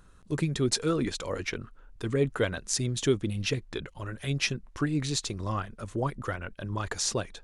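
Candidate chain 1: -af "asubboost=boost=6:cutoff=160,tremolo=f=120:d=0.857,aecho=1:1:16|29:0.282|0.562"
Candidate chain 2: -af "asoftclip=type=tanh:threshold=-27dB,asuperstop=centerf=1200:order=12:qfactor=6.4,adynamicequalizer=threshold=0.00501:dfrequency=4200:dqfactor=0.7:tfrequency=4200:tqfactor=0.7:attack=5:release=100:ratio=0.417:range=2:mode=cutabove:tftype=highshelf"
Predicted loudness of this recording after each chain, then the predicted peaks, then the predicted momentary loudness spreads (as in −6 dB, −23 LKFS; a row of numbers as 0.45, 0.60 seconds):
−29.0, −34.5 LKFS; −11.5, −22.0 dBFS; 9, 7 LU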